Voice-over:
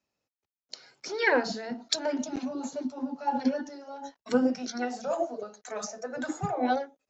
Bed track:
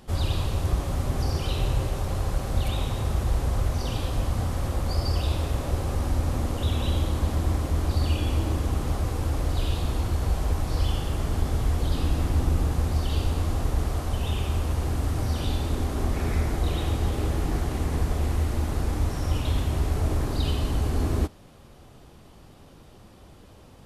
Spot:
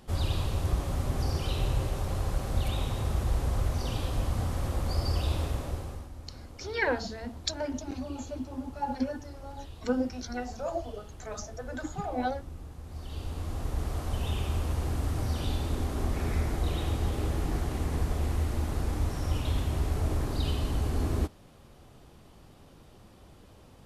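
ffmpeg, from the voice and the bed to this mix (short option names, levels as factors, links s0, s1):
-filter_complex "[0:a]adelay=5550,volume=0.631[s0];[1:a]volume=3.98,afade=t=out:st=5.42:d=0.67:silence=0.158489,afade=t=in:st=12.83:d=1.35:silence=0.16788[s1];[s0][s1]amix=inputs=2:normalize=0"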